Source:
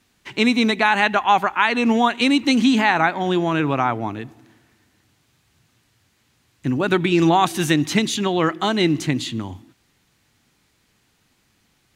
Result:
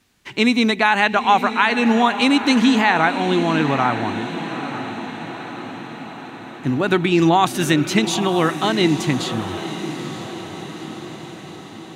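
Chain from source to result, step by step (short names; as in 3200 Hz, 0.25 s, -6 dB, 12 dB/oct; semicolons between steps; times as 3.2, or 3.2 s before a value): diffused feedback echo 0.917 s, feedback 61%, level -10.5 dB; gain +1 dB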